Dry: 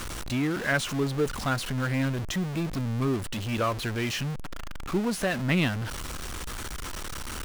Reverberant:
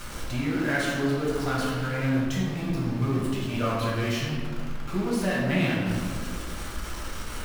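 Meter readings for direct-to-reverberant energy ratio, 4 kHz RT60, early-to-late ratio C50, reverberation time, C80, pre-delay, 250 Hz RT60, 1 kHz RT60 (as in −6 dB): −6.5 dB, 1.0 s, −1.0 dB, 2.1 s, 1.5 dB, 4 ms, 2.6 s, 1.8 s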